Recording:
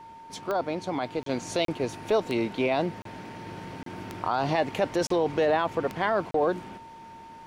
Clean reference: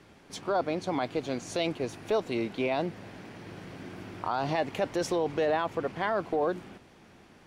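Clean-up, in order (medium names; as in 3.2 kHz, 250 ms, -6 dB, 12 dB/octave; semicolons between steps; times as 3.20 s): de-click; band-stop 910 Hz, Q 30; interpolate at 1.23/1.65/3.02/3.83/5.07/6.31 s, 33 ms; trim 0 dB, from 1.29 s -3.5 dB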